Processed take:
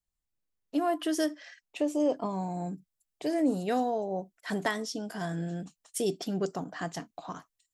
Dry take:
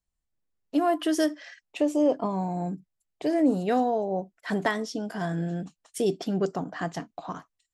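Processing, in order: treble shelf 4.5 kHz +3.5 dB, from 2.00 s +9.5 dB; trim -4.5 dB

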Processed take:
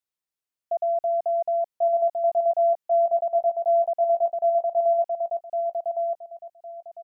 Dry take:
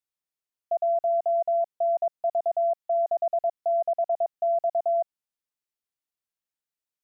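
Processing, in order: feedback delay 1109 ms, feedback 23%, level -3 dB

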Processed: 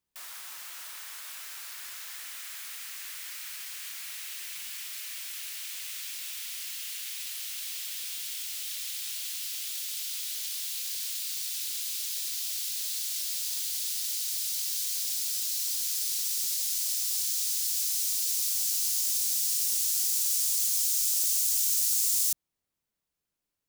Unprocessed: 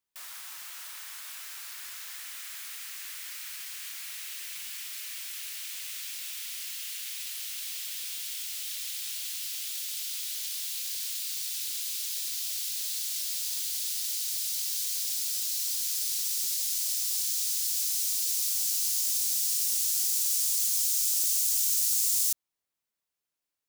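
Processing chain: bass shelf 340 Hz +11.5 dB

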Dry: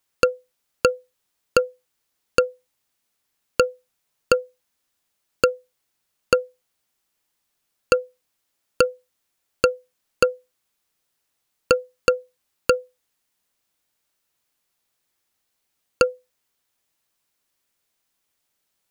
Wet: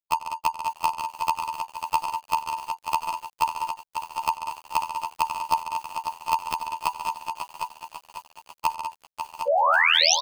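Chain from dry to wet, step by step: treble shelf 3.5 kHz -8 dB; level held to a coarse grid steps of 9 dB; waveshaping leveller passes 3; touch-sensitive phaser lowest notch 170 Hz, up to 2 kHz, full sweep at -13 dBFS; wide varispeed 1.85×; painted sound rise, 9.47–10.15 s, 510–6500 Hz -17 dBFS; robot voice 81.8 Hz; multi-tap echo 92/141/195/204/758 ms -17/-11/-10/-17/-7.5 dB; bit-crushed delay 545 ms, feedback 55%, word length 7-bit, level -7.5 dB; trim -1 dB

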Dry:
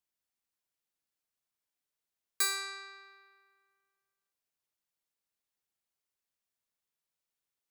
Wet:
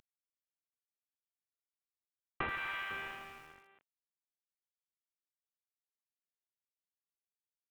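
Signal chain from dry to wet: CVSD coder 16 kbps; 2.49–2.91 s: high-pass 1 kHz 12 dB/octave; compression 6:1, threshold -47 dBFS, peak gain reduction 11.5 dB; bit-crushed delay 83 ms, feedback 80%, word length 11-bit, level -12 dB; trim +12 dB

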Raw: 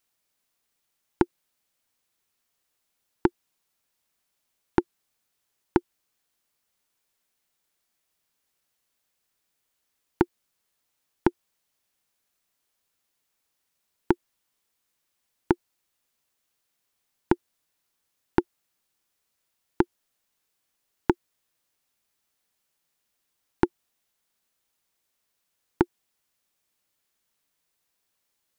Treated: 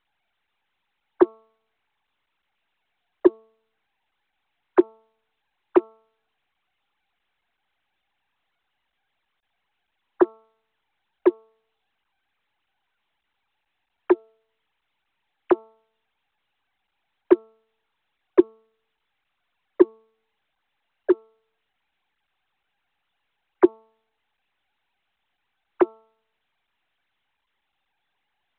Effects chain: formants replaced by sine waves; de-hum 221.9 Hz, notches 6; trim +6.5 dB; µ-law 64 kbps 8 kHz

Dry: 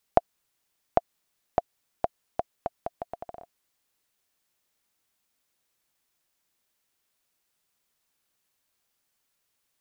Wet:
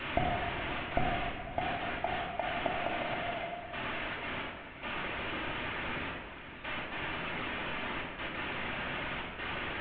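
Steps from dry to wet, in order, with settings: one-bit delta coder 16 kbps, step -30.5 dBFS; gate with hold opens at -33 dBFS; echo that smears into a reverb 539 ms, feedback 46%, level -11 dB; reverb removal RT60 0.74 s; simulated room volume 1200 m³, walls mixed, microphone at 2.6 m; trim -3 dB

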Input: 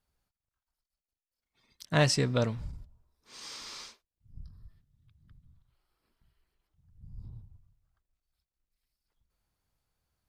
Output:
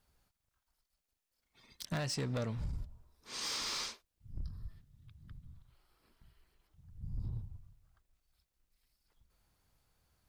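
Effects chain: compression 16:1, threshold -37 dBFS, peak gain reduction 19 dB; hard clipper -38.5 dBFS, distortion -13 dB; trim +6.5 dB

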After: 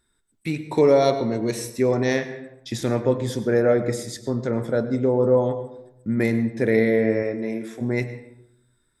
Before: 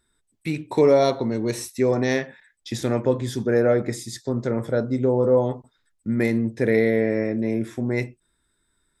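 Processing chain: 7.22–7.80 s: high-pass 210 Hz -> 820 Hz 6 dB/octave; reverberation RT60 0.80 s, pre-delay 92 ms, DRR 11.5 dB

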